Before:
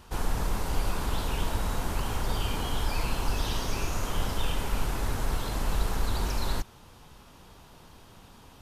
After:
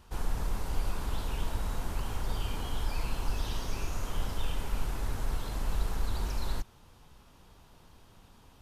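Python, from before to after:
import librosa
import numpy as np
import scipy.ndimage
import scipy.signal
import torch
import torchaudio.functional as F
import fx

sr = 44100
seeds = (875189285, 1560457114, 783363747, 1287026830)

y = fx.low_shelf(x, sr, hz=80.0, db=5.5)
y = y * 10.0 ** (-7.0 / 20.0)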